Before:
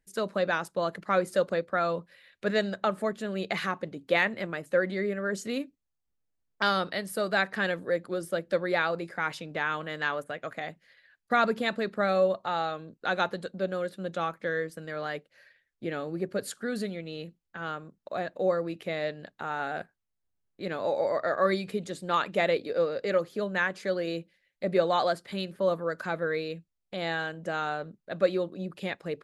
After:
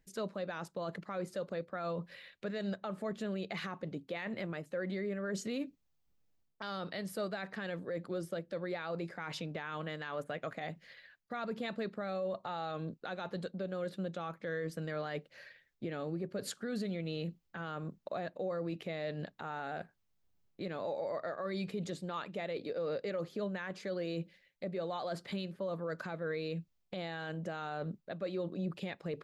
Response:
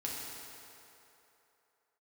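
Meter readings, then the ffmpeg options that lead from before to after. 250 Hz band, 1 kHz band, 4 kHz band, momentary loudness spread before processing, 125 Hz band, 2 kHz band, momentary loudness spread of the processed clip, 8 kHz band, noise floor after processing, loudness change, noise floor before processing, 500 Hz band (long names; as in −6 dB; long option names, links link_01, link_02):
−5.0 dB, −12.0 dB, −10.0 dB, 11 LU, −2.5 dB, −13.0 dB, 5 LU, −6.5 dB, −76 dBFS, −9.5 dB, −81 dBFS, −9.5 dB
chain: -af "equalizer=frequency=160:width_type=o:width=0.67:gain=4,equalizer=frequency=1600:width_type=o:width=0.67:gain=-3,equalizer=frequency=10000:width_type=o:width=0.67:gain=-9,areverse,acompressor=threshold=-36dB:ratio=4,areverse,alimiter=level_in=11dB:limit=-24dB:level=0:latency=1:release=166,volume=-11dB,volume=6dB"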